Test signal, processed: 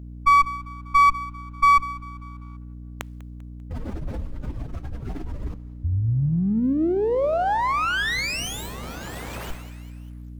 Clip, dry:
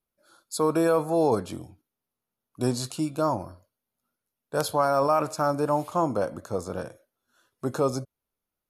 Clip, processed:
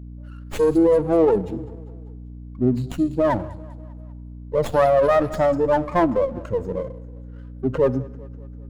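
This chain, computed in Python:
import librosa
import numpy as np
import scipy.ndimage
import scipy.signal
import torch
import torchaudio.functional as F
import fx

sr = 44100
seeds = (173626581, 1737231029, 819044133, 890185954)

p1 = fx.spec_expand(x, sr, power=2.7)
p2 = fx.rev_double_slope(p1, sr, seeds[0], early_s=0.68, late_s=2.1, knee_db=-17, drr_db=15.5)
p3 = fx.add_hum(p2, sr, base_hz=60, snr_db=15)
p4 = p3 + fx.echo_feedback(p3, sr, ms=197, feedback_pct=55, wet_db=-21.5, dry=0)
p5 = fx.running_max(p4, sr, window=9)
y = p5 * librosa.db_to_amplitude(6.5)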